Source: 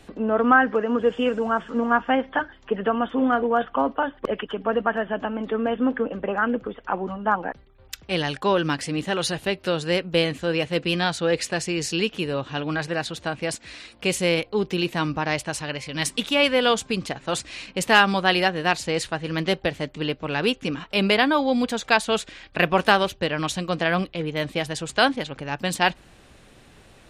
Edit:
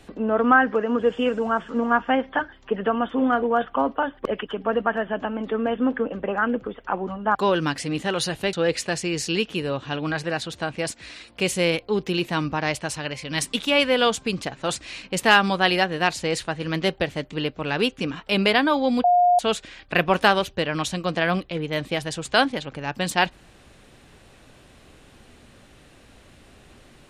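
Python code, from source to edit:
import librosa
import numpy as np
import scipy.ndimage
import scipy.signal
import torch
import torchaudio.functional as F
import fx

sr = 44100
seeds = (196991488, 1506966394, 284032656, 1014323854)

y = fx.edit(x, sr, fx.cut(start_s=7.35, length_s=1.03),
    fx.cut(start_s=9.56, length_s=1.61),
    fx.bleep(start_s=21.68, length_s=0.35, hz=712.0, db=-13.5), tone=tone)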